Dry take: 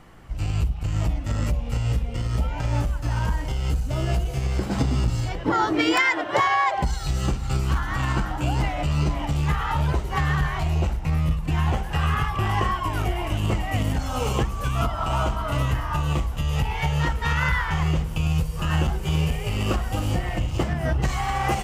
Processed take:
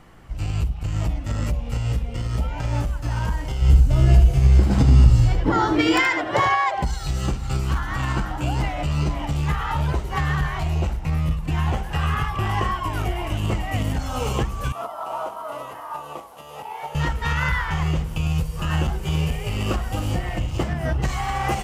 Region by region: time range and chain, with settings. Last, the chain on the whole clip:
3.61–6.55 low shelf 150 Hz +11 dB + echo 76 ms -7.5 dB
14.72–16.95 delta modulation 64 kbps, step -40.5 dBFS + Chebyshev high-pass 590 Hz + band shelf 3600 Hz -10 dB 2.9 oct
whole clip: dry

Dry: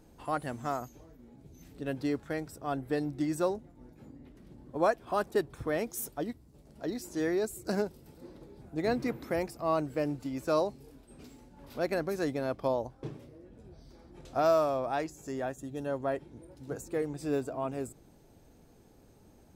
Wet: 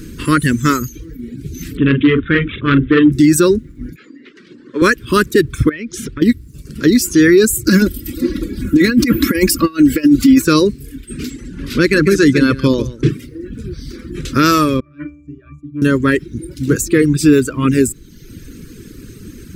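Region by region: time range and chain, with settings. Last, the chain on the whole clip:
1.77–3.12 doubler 43 ms -5 dB + careless resampling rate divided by 6×, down none, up filtered + core saturation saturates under 770 Hz
3.96–4.82 BPF 530–5800 Hz + air absorption 64 m
5.69–6.22 LPF 3300 Hz + compressor, threshold -43 dBFS
7.67–10.42 bell 14000 Hz +6.5 dB 0.27 oct + comb 3.6 ms, depth 64% + negative-ratio compressor -32 dBFS, ratio -0.5
11.3–13.09 LPF 9600 Hz + echo 0.144 s -8.5 dB
14.8–15.82 high shelf 2500 Hz +6 dB + octave resonator D, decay 0.62 s + core saturation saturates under 540 Hz
whole clip: Chebyshev band-stop 340–1600 Hz, order 2; reverb removal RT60 0.87 s; maximiser +29.5 dB; gain -1 dB

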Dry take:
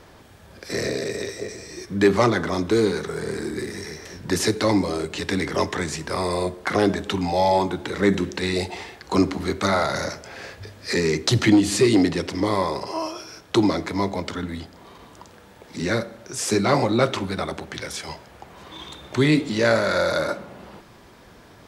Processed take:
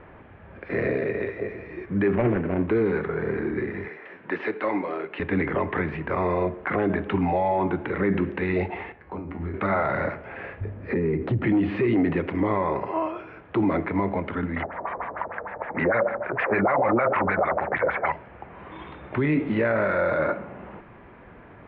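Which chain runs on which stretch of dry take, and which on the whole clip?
2.15–2.68 median filter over 41 samples + notch 1200 Hz, Q 16
3.88–5.2 HPF 230 Hz + low shelf 440 Hz -10.5 dB
8.92–9.54 tilt -1.5 dB/oct + compressor 12:1, threshold -22 dBFS + resonator 84 Hz, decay 0.37 s, mix 80%
10.61–11.47 tilt shelf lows +7.5 dB, about 720 Hz + compressor, threshold -22 dBFS
14.56–18.12 band shelf 1100 Hz +14 dB 2.4 oct + LFO low-pass sine 6.6 Hz 410–4200 Hz
whole clip: limiter -15.5 dBFS; steep low-pass 2500 Hz 36 dB/oct; gain +1.5 dB

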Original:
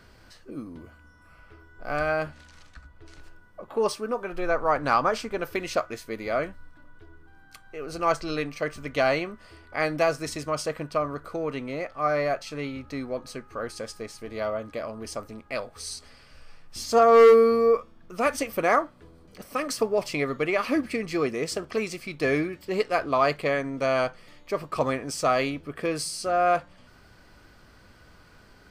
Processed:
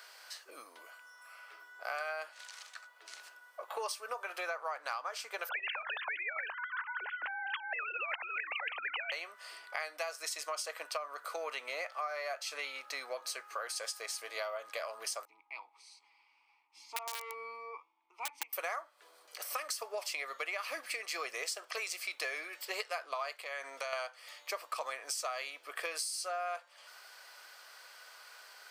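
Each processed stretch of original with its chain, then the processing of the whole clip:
5.49–9.12 sine-wave speech + spectral compressor 10:1
15.25–18.53 vowel filter u + bell 970 Hz +7 dB 0.22 oct + wrapped overs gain 27 dB
23.36–23.93 HPF 270 Hz 6 dB/oct + compressor 5:1, threshold -31 dBFS
whole clip: HPF 580 Hz 24 dB/oct; tilt +2.5 dB/oct; compressor 10:1, threshold -36 dBFS; gain +1 dB

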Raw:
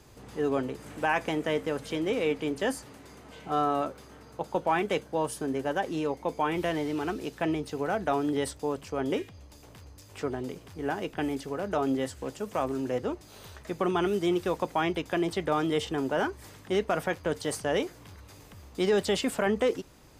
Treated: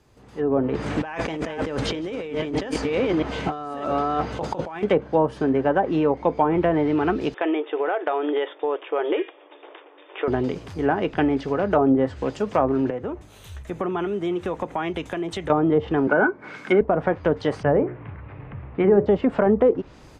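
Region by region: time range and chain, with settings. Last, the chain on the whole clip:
0.69–4.83 reverse delay 0.634 s, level -9 dB + LPF 11000 Hz + negative-ratio compressor -38 dBFS
7.34–10.28 brick-wall FIR band-pass 300–3700 Hz + compressor, threshold -29 dBFS
12.9–15.5 bell 4800 Hz -12.5 dB 0.43 oct + compressor 4:1, threshold -35 dBFS + three-band expander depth 100%
16.07–16.81 HPF 160 Hz 24 dB/oct + doubler 14 ms -12.5 dB + small resonant body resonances 1500/2200 Hz, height 17 dB, ringing for 25 ms
17.63–19.06 steep low-pass 2500 Hz + bell 130 Hz +14.5 dB 0.29 oct + notches 60/120/180/240/300/360/420/480/540/600 Hz
whole clip: treble ducked by the level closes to 810 Hz, closed at -23 dBFS; AGC gain up to 16 dB; high shelf 5900 Hz -8.5 dB; gain -4.5 dB

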